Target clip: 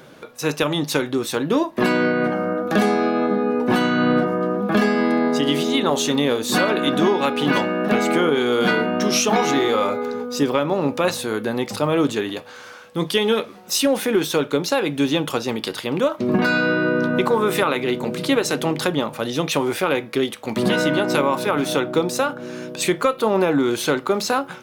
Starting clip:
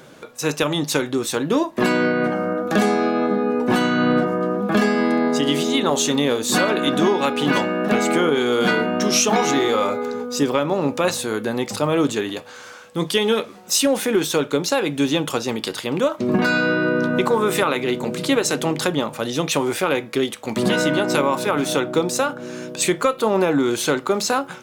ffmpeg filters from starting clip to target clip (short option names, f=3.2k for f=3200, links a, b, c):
-af "equalizer=f=7.4k:t=o:w=0.61:g=-6"